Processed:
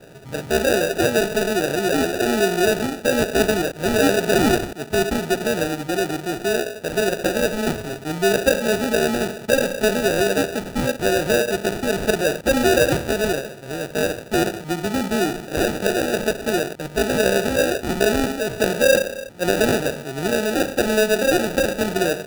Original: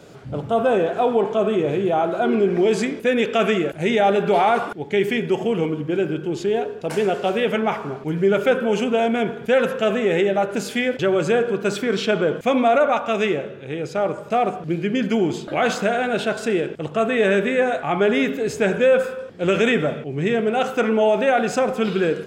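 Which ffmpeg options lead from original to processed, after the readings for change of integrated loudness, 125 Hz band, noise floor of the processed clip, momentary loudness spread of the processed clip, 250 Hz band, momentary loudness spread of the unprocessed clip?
0.0 dB, 0.0 dB, -37 dBFS, 6 LU, 0.0 dB, 6 LU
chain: -filter_complex "[0:a]acrossover=split=190[a][b];[a]asoftclip=type=tanh:threshold=-37.5dB[c];[c][b]amix=inputs=2:normalize=0,acrusher=samples=41:mix=1:aa=0.000001"

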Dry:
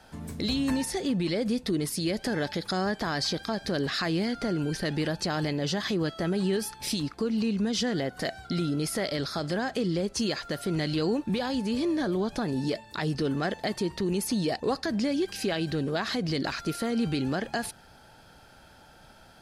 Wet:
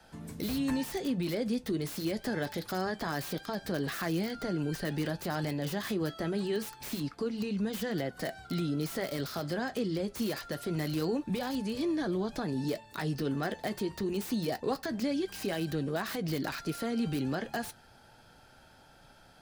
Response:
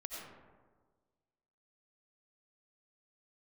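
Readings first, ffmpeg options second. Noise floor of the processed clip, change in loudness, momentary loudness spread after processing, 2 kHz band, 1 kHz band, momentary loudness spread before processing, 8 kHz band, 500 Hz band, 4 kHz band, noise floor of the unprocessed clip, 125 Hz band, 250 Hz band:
-58 dBFS, -4.5 dB, 4 LU, -4.5 dB, -4.0 dB, 4 LU, -7.5 dB, -4.0 dB, -8.0 dB, -54 dBFS, -4.0 dB, -4.5 dB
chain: -filter_complex "[0:a]acrossover=split=180|1300|2400[a][b][c][d];[d]aeval=exprs='(mod(42.2*val(0)+1,2)-1)/42.2':c=same[e];[a][b][c][e]amix=inputs=4:normalize=0,flanger=delay=5.9:depth=2.8:regen=-63:speed=0.25:shape=triangular"

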